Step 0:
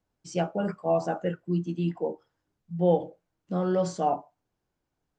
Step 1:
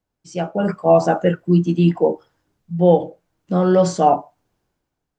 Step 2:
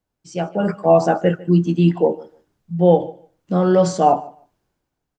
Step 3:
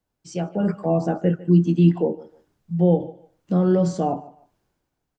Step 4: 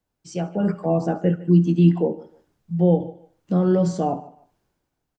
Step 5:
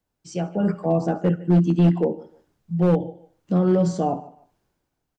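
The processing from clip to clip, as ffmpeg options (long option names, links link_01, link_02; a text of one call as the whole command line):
ffmpeg -i in.wav -af "dynaudnorm=framelen=130:gausssize=9:maxgain=14.5dB" out.wav
ffmpeg -i in.wav -af "aecho=1:1:150|300:0.0891|0.0134" out.wav
ffmpeg -i in.wav -filter_complex "[0:a]acrossover=split=380[link_01][link_02];[link_02]acompressor=threshold=-36dB:ratio=2[link_03];[link_01][link_03]amix=inputs=2:normalize=0" out.wav
ffmpeg -i in.wav -af "aecho=1:1:69|138|207:0.1|0.038|0.0144" out.wav
ffmpeg -i in.wav -af "asoftclip=type=hard:threshold=-11.5dB" out.wav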